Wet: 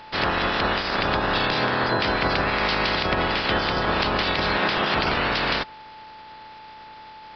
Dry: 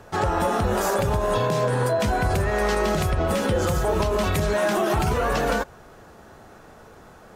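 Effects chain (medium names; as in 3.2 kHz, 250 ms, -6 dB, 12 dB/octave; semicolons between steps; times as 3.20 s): spectral peaks clipped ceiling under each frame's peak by 24 dB; whistle 870 Hz -41 dBFS; resampled via 11.025 kHz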